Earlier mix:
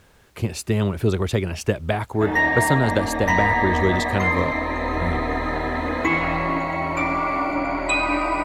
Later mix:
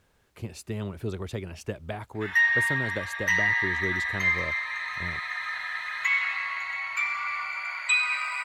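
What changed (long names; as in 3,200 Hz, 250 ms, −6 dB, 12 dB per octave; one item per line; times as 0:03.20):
speech −12.0 dB
background: add high-pass filter 1,500 Hz 24 dB per octave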